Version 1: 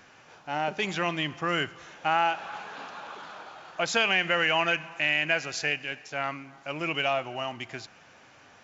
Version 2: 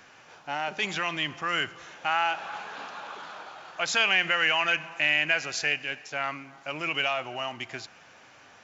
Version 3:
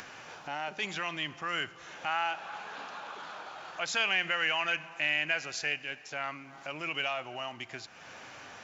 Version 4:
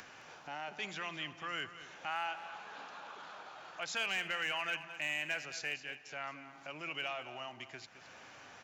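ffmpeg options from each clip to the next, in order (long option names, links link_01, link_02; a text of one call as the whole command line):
ffmpeg -i in.wav -filter_complex "[0:a]lowshelf=frequency=410:gain=-4.5,acrossover=split=900[link_01][link_02];[link_01]alimiter=level_in=8dB:limit=-24dB:level=0:latency=1,volume=-8dB[link_03];[link_03][link_02]amix=inputs=2:normalize=0,volume=2dB" out.wav
ffmpeg -i in.wav -af "acompressor=mode=upward:threshold=-31dB:ratio=2.5,volume=-5.5dB" out.wav
ffmpeg -i in.wav -filter_complex "[0:a]acrossover=split=310[link_01][link_02];[link_02]volume=21.5dB,asoftclip=hard,volume=-21.5dB[link_03];[link_01][link_03]amix=inputs=2:normalize=0,aecho=1:1:215:0.224,volume=-6.5dB" out.wav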